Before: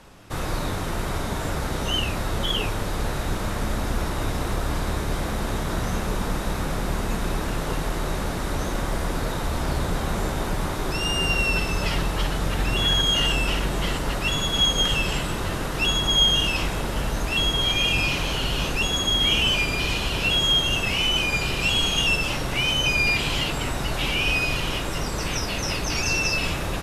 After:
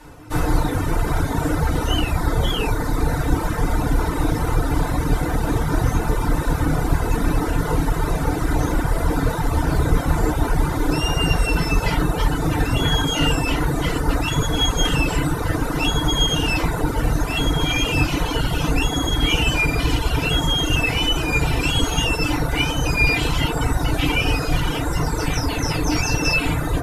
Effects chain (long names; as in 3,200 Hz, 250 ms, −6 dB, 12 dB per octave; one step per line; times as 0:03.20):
low-shelf EQ 73 Hz +7.5 dB
feedback delay network reverb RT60 0.39 s, low-frequency decay 1.05×, high-frequency decay 0.25×, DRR −7.5 dB
reverb reduction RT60 1.2 s
high-shelf EQ 8,100 Hz +9.5 dB
level −2.5 dB